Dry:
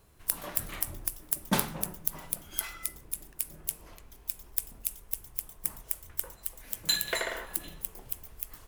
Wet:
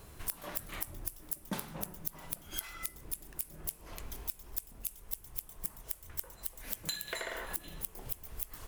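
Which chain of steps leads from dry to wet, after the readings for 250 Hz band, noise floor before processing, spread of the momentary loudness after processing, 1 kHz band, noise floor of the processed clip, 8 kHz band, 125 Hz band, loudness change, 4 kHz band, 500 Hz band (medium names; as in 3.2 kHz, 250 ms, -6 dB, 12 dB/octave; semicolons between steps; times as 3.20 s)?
-7.5 dB, -55 dBFS, 4 LU, -7.0 dB, -56 dBFS, -7.5 dB, -5.0 dB, -6.5 dB, -9.0 dB, -6.0 dB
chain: compression 10:1, threshold -44 dBFS, peak gain reduction 23 dB; trim +9 dB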